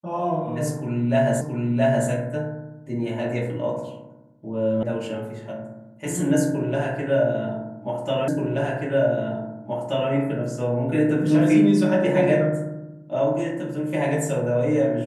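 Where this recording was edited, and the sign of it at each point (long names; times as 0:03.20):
0:01.41: the same again, the last 0.67 s
0:04.83: cut off before it has died away
0:08.28: the same again, the last 1.83 s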